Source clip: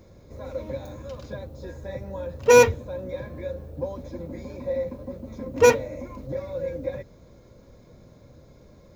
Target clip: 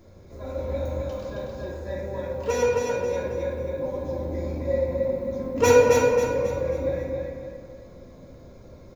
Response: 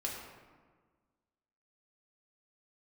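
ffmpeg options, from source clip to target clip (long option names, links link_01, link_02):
-filter_complex "[0:a]asettb=1/sr,asplit=3[link_01][link_02][link_03];[link_01]atrim=end=1.304[link_04];[link_02]atrim=start=1.3:end=3.72,asetpts=PTS-STARTPTS,afade=type=in:duration=0.004:curve=qsin,afade=type=out:start_time=2.416:duration=0.004:curve=qsin,acrossover=split=130|7000[link_05][link_06][link_07];[link_05]acompressor=threshold=-48dB:ratio=4[link_08];[link_06]acompressor=threshold=-22dB:ratio=4[link_09];[link_07]acompressor=threshold=-54dB:ratio=4[link_10];[link_08][link_09][link_10]amix=inputs=3:normalize=0[link_11];[link_03]atrim=start=3.716[link_12];[link_04][link_11]acrossfade=duration=0.004:curve1=hsin:curve2=qsin[link_13];[link_13][link_12]acrossfade=duration=0.004:curve1=qsin:curve2=hsin,aecho=1:1:269|538|807|1076|1345:0.668|0.261|0.102|0.0396|0.0155[link_14];[1:a]atrim=start_sample=2205[link_15];[link_14][link_15]afir=irnorm=-1:irlink=0"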